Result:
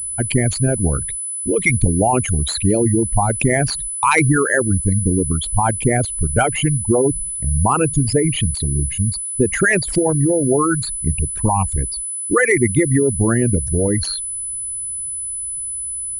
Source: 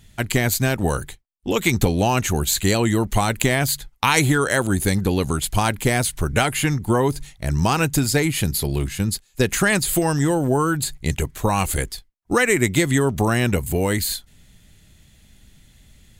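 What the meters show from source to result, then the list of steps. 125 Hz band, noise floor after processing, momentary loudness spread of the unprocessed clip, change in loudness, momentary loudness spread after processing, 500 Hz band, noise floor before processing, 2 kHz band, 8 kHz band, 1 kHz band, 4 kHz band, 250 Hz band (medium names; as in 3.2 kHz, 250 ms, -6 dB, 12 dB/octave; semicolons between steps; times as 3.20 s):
+3.5 dB, -26 dBFS, 7 LU, +3.0 dB, 8 LU, +3.5 dB, -55 dBFS, +1.5 dB, +6.5 dB, +2.5 dB, -3.0 dB, +2.5 dB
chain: resonances exaggerated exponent 3; class-D stage that switches slowly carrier 10 kHz; trim +3 dB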